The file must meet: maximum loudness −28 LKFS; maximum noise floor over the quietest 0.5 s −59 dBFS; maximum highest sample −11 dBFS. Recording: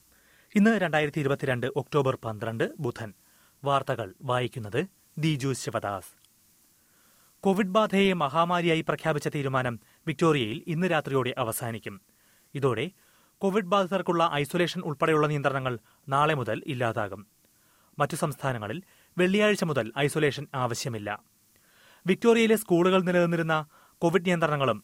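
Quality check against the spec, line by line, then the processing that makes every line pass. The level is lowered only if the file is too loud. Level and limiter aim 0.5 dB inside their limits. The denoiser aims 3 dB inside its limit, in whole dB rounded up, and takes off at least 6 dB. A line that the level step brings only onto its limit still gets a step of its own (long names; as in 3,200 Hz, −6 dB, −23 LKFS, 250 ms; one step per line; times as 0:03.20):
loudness −27.0 LKFS: out of spec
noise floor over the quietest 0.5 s −64 dBFS: in spec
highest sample −10.0 dBFS: out of spec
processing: level −1.5 dB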